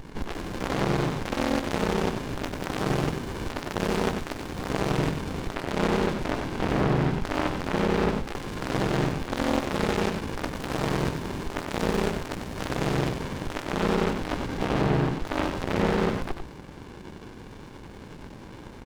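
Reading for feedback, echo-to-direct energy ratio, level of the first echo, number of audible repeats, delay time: no regular repeats, -7.0 dB, -7.0 dB, 1, 94 ms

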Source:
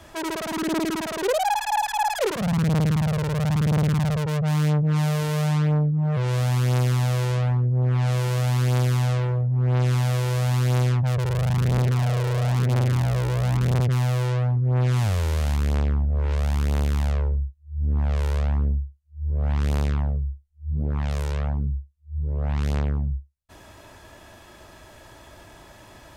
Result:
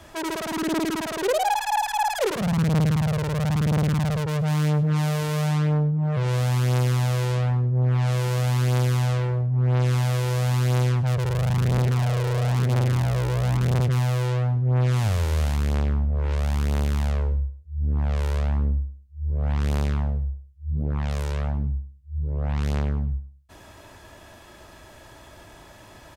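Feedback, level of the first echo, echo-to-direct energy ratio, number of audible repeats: 26%, -16.0 dB, -15.5 dB, 2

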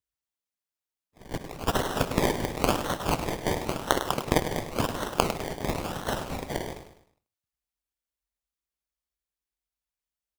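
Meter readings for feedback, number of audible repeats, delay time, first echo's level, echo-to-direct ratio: 40%, 4, 102 ms, -10.0 dB, -9.5 dB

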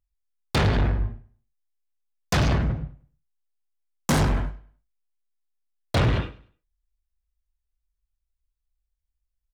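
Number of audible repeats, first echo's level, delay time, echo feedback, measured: 2, -19.5 dB, 101 ms, 31%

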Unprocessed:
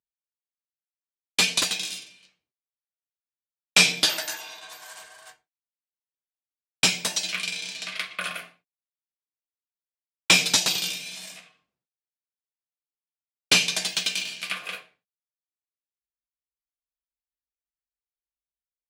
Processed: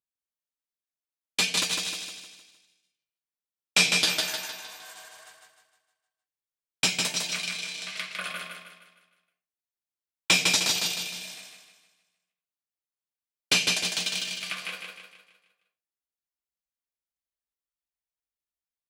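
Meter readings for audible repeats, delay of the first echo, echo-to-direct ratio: 5, 154 ms, -3.0 dB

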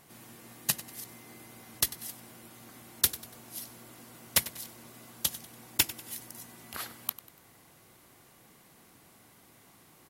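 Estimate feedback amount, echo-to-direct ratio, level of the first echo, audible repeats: 40%, -15.5 dB, -16.5 dB, 3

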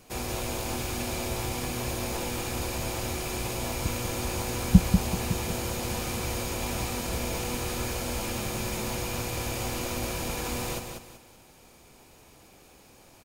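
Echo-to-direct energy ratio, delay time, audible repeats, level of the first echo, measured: -5.5 dB, 191 ms, 3, -6.0 dB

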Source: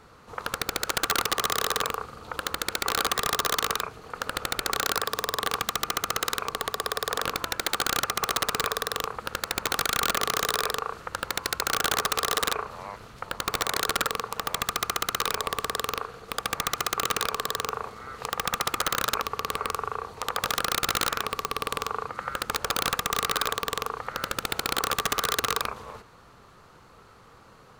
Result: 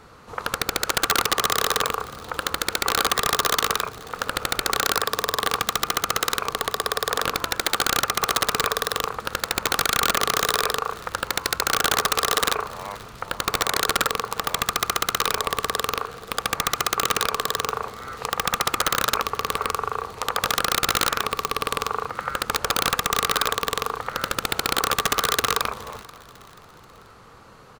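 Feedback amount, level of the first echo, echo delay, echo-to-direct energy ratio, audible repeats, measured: 47%, -22.0 dB, 484 ms, -21.0 dB, 2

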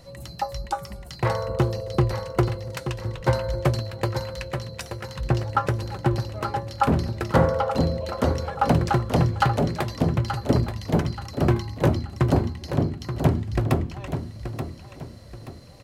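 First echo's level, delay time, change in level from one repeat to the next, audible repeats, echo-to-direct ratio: -9.0 dB, 879 ms, -9.0 dB, 3, -8.5 dB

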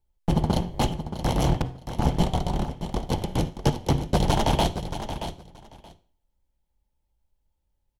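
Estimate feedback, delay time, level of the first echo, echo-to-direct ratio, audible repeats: 16%, 626 ms, -10.0 dB, -10.0 dB, 2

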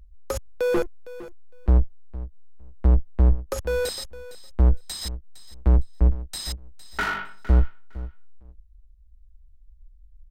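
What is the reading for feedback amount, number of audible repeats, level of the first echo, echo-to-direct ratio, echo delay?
17%, 2, -16.5 dB, -16.5 dB, 459 ms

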